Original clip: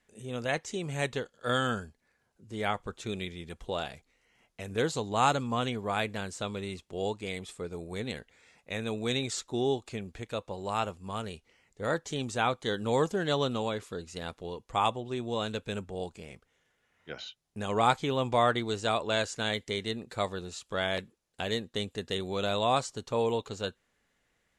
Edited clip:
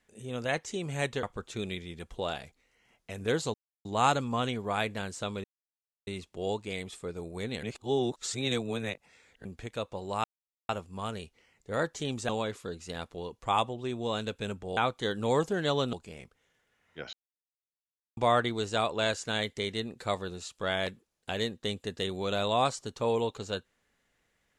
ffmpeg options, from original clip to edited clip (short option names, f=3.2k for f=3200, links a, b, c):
-filter_complex "[0:a]asplit=12[a][b][c][d][e][f][g][h][i][j][k][l];[a]atrim=end=1.232[m];[b]atrim=start=2.728:end=5.04,asetpts=PTS-STARTPTS,afade=t=out:st=2.308:d=0.004:c=hsin,apad=pad_dur=0.31[n];[c]atrim=start=5.04:end=6.63,asetpts=PTS-STARTPTS,afade=t=in:d=0.004:c=hsin,afade=t=out:st=1.586:d=0.004:c=hsin,apad=pad_dur=0.63[o];[d]atrim=start=6.63:end=8.192,asetpts=PTS-STARTPTS,afade=t=in:d=0.004:c=hsin[p];[e]atrim=start=8.188:end=10.012,asetpts=PTS-STARTPTS,areverse[q];[f]atrim=start=10.008:end=10.8,asetpts=PTS-STARTPTS,afade=t=out:st=0.788:d=0.004:c=hsin,apad=pad_dur=0.45[r];[g]atrim=start=10.8:end=12.402,asetpts=PTS-STARTPTS,afade=t=in:d=0.004:c=hsin[s];[h]atrim=start=13.558:end=16.042[t];[i]atrim=start=12.398:end=13.562[u];[j]atrim=start=16.038:end=17.24,asetpts=PTS-STARTPTS,afade=t=out:st=1.198:d=0.004:c=hsin[v];[k]atrim=start=17.24:end=18.28,asetpts=PTS-STARTPTS,volume=0[w];[l]atrim=start=18.28,asetpts=PTS-STARTPTS,afade=t=in:d=0.004:c=hsin[x];[n][o][p]concat=n=3:v=0:a=1[y];[m][y]acrossfade=d=0.004:c1=hsin:c2=hsin[z];[z][q]acrossfade=d=0.004:c1=hsin:c2=hsin[aa];[r][s]concat=n=2:v=0:a=1[ab];[aa][ab]acrossfade=d=0.004:c1=hsin:c2=hsin[ac];[ac][t]acrossfade=d=0.004:c1=hsin:c2=hsin[ad];[ad][u]acrossfade=d=0.004:c1=hsin:c2=hsin[ae];[v][w][x]concat=n=3:v=0:a=1[af];[ae][af]acrossfade=d=0.004:c1=hsin:c2=hsin"